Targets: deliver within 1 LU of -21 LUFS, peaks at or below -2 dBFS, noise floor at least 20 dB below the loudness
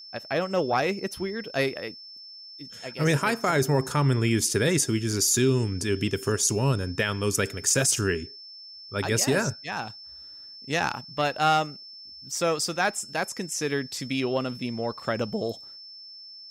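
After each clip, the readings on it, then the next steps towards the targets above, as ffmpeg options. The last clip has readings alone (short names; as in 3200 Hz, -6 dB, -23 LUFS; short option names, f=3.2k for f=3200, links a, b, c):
steady tone 5300 Hz; tone level -42 dBFS; loudness -26.0 LUFS; peak -11.5 dBFS; loudness target -21.0 LUFS
-> -af "bandreject=f=5.3k:w=30"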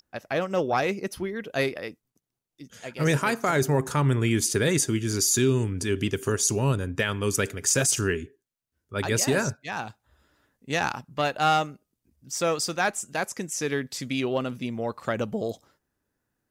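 steady tone none; loudness -26.0 LUFS; peak -11.5 dBFS; loudness target -21.0 LUFS
-> -af "volume=5dB"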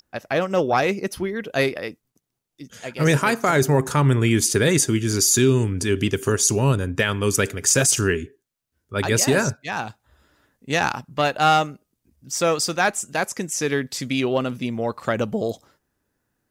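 loudness -21.0 LUFS; peak -6.5 dBFS; noise floor -78 dBFS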